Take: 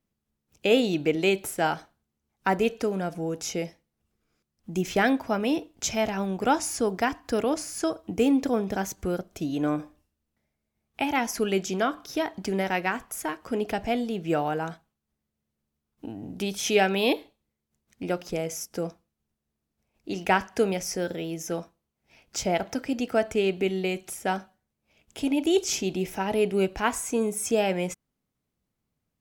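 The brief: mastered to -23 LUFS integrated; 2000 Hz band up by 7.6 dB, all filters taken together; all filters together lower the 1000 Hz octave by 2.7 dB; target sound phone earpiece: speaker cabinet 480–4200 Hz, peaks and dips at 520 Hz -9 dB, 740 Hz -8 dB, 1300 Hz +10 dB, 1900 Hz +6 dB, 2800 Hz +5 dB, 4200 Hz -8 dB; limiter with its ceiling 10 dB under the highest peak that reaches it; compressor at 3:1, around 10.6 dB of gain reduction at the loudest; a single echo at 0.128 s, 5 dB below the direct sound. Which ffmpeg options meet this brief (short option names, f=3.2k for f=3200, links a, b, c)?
-af "equalizer=f=1k:t=o:g=-7,equalizer=f=2k:t=o:g=5.5,acompressor=threshold=-32dB:ratio=3,alimiter=level_in=0.5dB:limit=-24dB:level=0:latency=1,volume=-0.5dB,highpass=480,equalizer=f=520:t=q:w=4:g=-9,equalizer=f=740:t=q:w=4:g=-8,equalizer=f=1.3k:t=q:w=4:g=10,equalizer=f=1.9k:t=q:w=4:g=6,equalizer=f=2.8k:t=q:w=4:g=5,equalizer=f=4.2k:t=q:w=4:g=-8,lowpass=f=4.2k:w=0.5412,lowpass=f=4.2k:w=1.3066,aecho=1:1:128:0.562,volume=13.5dB"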